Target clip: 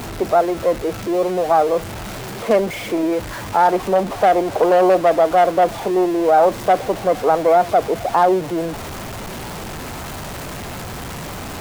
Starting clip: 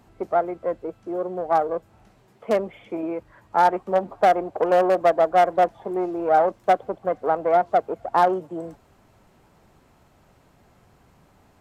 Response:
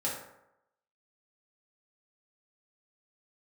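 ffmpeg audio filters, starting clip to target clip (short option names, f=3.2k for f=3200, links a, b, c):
-af "aeval=exprs='val(0)+0.5*0.0266*sgn(val(0))':c=same,alimiter=limit=-12.5dB:level=0:latency=1:release=13,volume=7dB"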